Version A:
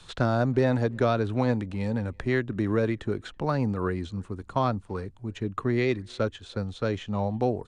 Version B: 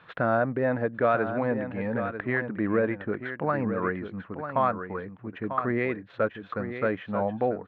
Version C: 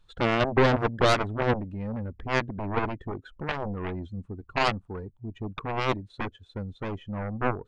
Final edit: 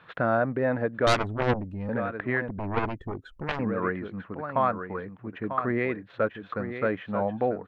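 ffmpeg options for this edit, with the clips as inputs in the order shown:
-filter_complex "[2:a]asplit=2[s0][s1];[1:a]asplit=3[s2][s3][s4];[s2]atrim=end=1.072[s5];[s0]atrim=start=1.068:end=1.892[s6];[s3]atrim=start=1.888:end=2.492[s7];[s1]atrim=start=2.488:end=3.592[s8];[s4]atrim=start=3.588[s9];[s5][s6]acrossfade=d=0.004:c1=hsin:c2=hsin[s10];[s10][s7]acrossfade=d=0.004:c1=hsin:c2=hsin[s11];[s11][s8]acrossfade=d=0.004:c1=hsin:c2=hsin[s12];[s12][s9]acrossfade=d=0.004:c1=hsin:c2=hsin"

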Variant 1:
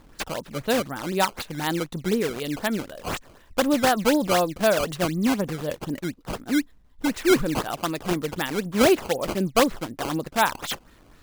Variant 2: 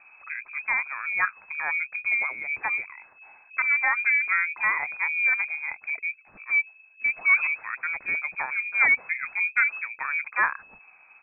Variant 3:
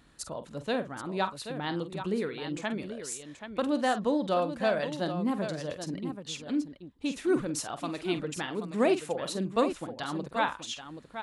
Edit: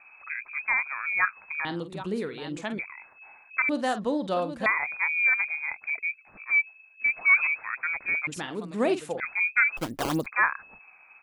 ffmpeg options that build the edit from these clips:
-filter_complex "[2:a]asplit=3[s0][s1][s2];[1:a]asplit=5[s3][s4][s5][s6][s7];[s3]atrim=end=1.652[s8];[s0]atrim=start=1.648:end=2.792[s9];[s4]atrim=start=2.788:end=3.692[s10];[s1]atrim=start=3.688:end=4.662[s11];[s5]atrim=start=4.658:end=8.272[s12];[s2]atrim=start=8.268:end=9.202[s13];[s6]atrim=start=9.198:end=9.772[s14];[0:a]atrim=start=9.768:end=10.262[s15];[s7]atrim=start=10.258[s16];[s8][s9]acrossfade=d=0.004:c1=hsin:c2=hsin[s17];[s17][s10]acrossfade=d=0.004:c1=hsin:c2=hsin[s18];[s18][s11]acrossfade=d=0.004:c1=hsin:c2=hsin[s19];[s19][s12]acrossfade=d=0.004:c1=hsin:c2=hsin[s20];[s20][s13]acrossfade=d=0.004:c1=hsin:c2=hsin[s21];[s21][s14]acrossfade=d=0.004:c1=hsin:c2=hsin[s22];[s22][s15]acrossfade=d=0.004:c1=hsin:c2=hsin[s23];[s23][s16]acrossfade=d=0.004:c1=hsin:c2=hsin"

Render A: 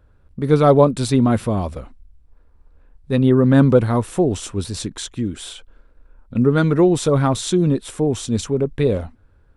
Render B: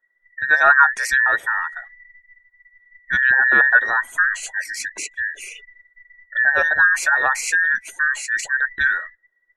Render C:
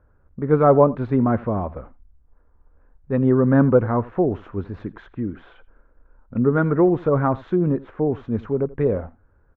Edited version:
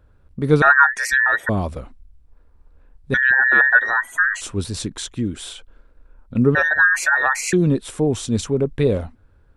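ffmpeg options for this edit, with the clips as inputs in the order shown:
-filter_complex "[1:a]asplit=3[s0][s1][s2];[0:a]asplit=4[s3][s4][s5][s6];[s3]atrim=end=0.622[s7];[s0]atrim=start=0.618:end=1.492[s8];[s4]atrim=start=1.488:end=3.142[s9];[s1]atrim=start=3.138:end=4.412[s10];[s5]atrim=start=4.408:end=6.552[s11];[s2]atrim=start=6.548:end=7.532[s12];[s6]atrim=start=7.528[s13];[s7][s8]acrossfade=d=0.004:c1=hsin:c2=hsin[s14];[s14][s9]acrossfade=d=0.004:c1=hsin:c2=hsin[s15];[s15][s10]acrossfade=d=0.004:c1=hsin:c2=hsin[s16];[s16][s11]acrossfade=d=0.004:c1=hsin:c2=hsin[s17];[s17][s12]acrossfade=d=0.004:c1=hsin:c2=hsin[s18];[s18][s13]acrossfade=d=0.004:c1=hsin:c2=hsin"

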